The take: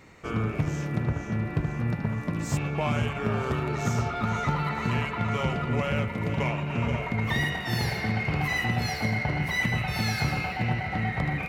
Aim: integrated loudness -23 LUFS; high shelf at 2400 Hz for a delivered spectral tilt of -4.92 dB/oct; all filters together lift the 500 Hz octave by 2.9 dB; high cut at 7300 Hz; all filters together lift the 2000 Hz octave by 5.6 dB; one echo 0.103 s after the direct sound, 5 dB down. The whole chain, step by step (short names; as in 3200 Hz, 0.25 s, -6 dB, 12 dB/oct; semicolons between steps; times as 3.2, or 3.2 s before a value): LPF 7300 Hz; bell 500 Hz +3.5 dB; bell 2000 Hz +8 dB; high shelf 2400 Hz -4.5 dB; echo 0.103 s -5 dB; gain +1 dB